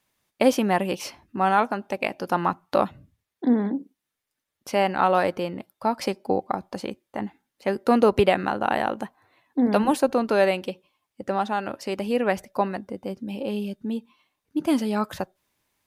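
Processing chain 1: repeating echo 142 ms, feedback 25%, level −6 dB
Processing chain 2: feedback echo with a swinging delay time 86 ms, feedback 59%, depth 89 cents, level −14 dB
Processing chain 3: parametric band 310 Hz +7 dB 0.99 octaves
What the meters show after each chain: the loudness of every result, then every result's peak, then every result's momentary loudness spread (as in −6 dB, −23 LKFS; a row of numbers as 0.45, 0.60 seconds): −24.0, −25.0, −22.0 LKFS; −5.0, −5.0, −3.0 dBFS; 13, 13, 13 LU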